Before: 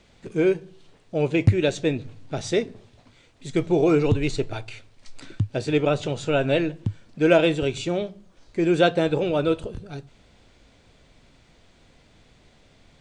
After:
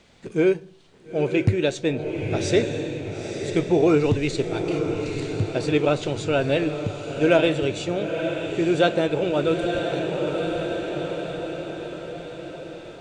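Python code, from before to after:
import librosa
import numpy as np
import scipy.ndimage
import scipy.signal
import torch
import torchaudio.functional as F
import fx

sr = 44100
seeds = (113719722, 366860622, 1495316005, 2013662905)

p1 = x + fx.echo_diffused(x, sr, ms=921, feedback_pct=53, wet_db=-6.5, dry=0)
p2 = fx.rider(p1, sr, range_db=5, speed_s=2.0)
y = fx.low_shelf(p2, sr, hz=68.0, db=-9.5)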